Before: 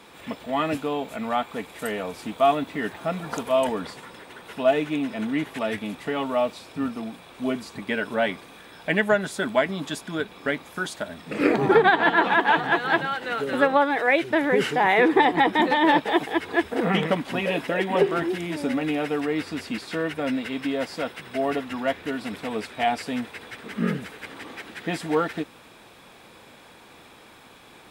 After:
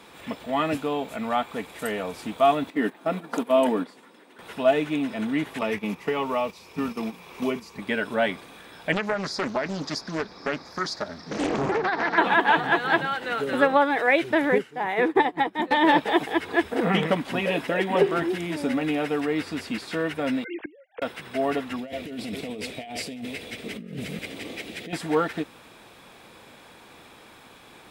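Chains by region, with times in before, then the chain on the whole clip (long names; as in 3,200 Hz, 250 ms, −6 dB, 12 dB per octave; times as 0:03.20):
0:02.70–0:04.39: noise gate −33 dBFS, range −11 dB + dynamic equaliser 6,100 Hz, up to −5 dB, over −51 dBFS, Q 1.1 + high-pass with resonance 250 Hz, resonance Q 2.1
0:05.61–0:07.79: noise gate −34 dBFS, range −8 dB + EQ curve with evenly spaced ripples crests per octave 0.8, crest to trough 7 dB + multiband upward and downward compressor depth 70%
0:08.92–0:12.18: drawn EQ curve 1,900 Hz 0 dB, 3,100 Hz −13 dB, 4,900 Hz +15 dB, 8,300 Hz −12 dB + downward compressor 10 to 1, threshold −20 dBFS + highs frequency-modulated by the lows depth 0.63 ms
0:14.58–0:15.71: parametric band 3,500 Hz −2.5 dB 2 octaves + expander for the loud parts 2.5 to 1, over −29 dBFS
0:20.44–0:21.02: three sine waves on the formant tracks + low-pass filter 3,000 Hz + gate with flip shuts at −23 dBFS, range −26 dB
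0:21.76–0:24.93: delay that plays each chunk backwards 162 ms, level −13 dB + flat-topped bell 1,200 Hz −12 dB 1.3 octaves + compressor whose output falls as the input rises −34 dBFS
whole clip: no processing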